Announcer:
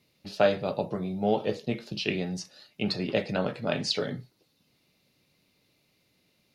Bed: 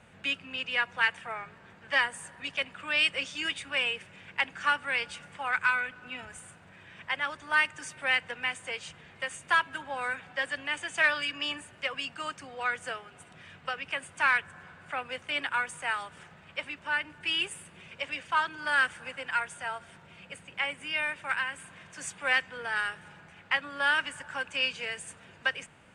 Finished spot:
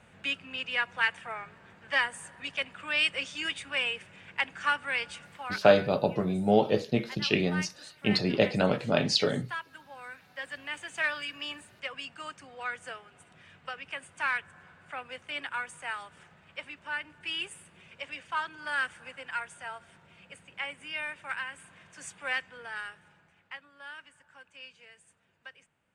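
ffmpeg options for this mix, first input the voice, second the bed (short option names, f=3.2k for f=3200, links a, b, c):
-filter_complex "[0:a]adelay=5250,volume=3dB[a];[1:a]volume=6dB,afade=t=out:st=5.18:d=0.52:silence=0.281838,afade=t=in:st=10.18:d=0.47:silence=0.446684,afade=t=out:st=22.23:d=1.49:silence=0.199526[b];[a][b]amix=inputs=2:normalize=0"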